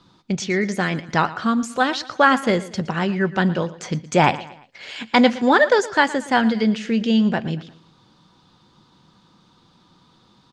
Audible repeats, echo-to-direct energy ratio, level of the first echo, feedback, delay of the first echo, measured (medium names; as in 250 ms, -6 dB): 3, -16.5 dB, -17.5 dB, 42%, 116 ms